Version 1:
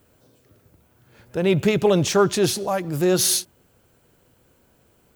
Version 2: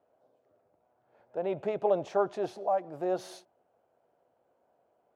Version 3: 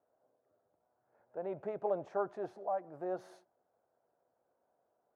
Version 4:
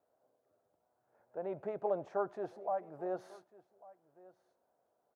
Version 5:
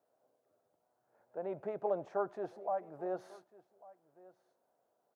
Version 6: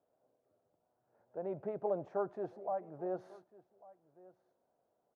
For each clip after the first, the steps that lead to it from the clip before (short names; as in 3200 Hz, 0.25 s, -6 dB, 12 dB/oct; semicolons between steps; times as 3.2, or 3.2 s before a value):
band-pass 690 Hz, Q 3.5
resonant high shelf 2200 Hz -8.5 dB, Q 1.5; gain -8 dB
echo 1.147 s -21.5 dB
HPF 100 Hz
tilt -2.5 dB/oct; gain -3 dB